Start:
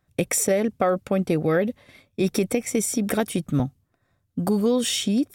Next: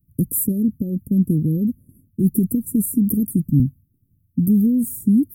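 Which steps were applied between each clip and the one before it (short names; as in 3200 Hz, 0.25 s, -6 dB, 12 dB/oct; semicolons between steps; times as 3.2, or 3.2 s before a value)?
inverse Chebyshev band-stop 770–4800 Hz, stop band 60 dB; high shelf 11000 Hz +6 dB; gain +8.5 dB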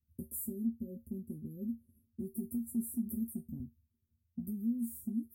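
compressor, threshold -18 dBFS, peak gain reduction 7.5 dB; resonator 77 Hz, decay 0.18 s, harmonics odd, mix 100%; gain -7.5 dB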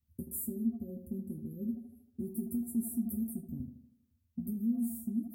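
tape echo 78 ms, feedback 58%, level -8 dB, low-pass 2200 Hz; gain +2 dB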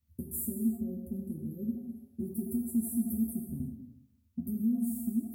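non-linear reverb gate 0.39 s falling, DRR 4 dB; gain +1.5 dB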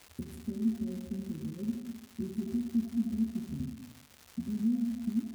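treble ducked by the level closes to 690 Hz, closed at -29 dBFS; crackle 390/s -41 dBFS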